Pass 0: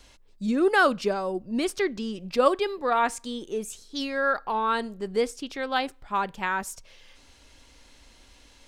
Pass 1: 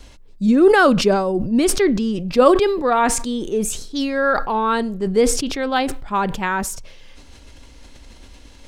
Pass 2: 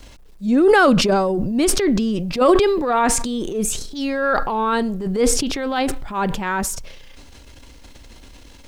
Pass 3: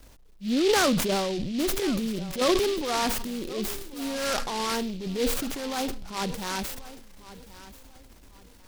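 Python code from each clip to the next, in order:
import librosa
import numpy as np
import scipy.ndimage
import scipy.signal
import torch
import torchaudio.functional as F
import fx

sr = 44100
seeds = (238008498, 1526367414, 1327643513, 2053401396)

y1 = fx.low_shelf(x, sr, hz=470.0, db=8.5)
y1 = fx.sustainer(y1, sr, db_per_s=54.0)
y1 = F.gain(torch.from_numpy(y1), 4.0).numpy()
y2 = fx.transient(y1, sr, attack_db=-10, sustain_db=5)
y2 = fx.quant_dither(y2, sr, seeds[0], bits=10, dither='none')
y3 = fx.echo_feedback(y2, sr, ms=1086, feedback_pct=28, wet_db=-17.0)
y3 = fx.noise_mod_delay(y3, sr, seeds[1], noise_hz=3400.0, depth_ms=0.1)
y3 = F.gain(torch.from_numpy(y3), -9.0).numpy()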